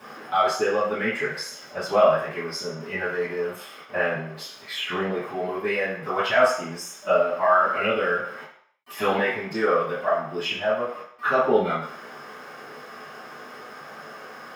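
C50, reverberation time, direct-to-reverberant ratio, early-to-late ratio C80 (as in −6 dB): 3.5 dB, 0.65 s, −14.5 dB, 7.5 dB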